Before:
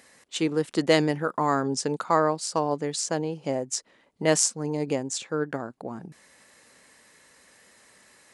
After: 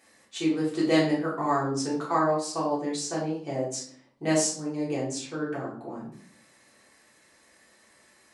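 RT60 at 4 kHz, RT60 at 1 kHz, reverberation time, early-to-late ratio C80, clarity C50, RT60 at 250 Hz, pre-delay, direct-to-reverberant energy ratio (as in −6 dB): 0.45 s, 0.50 s, 0.55 s, 10.0 dB, 5.0 dB, 0.85 s, 3 ms, −8.0 dB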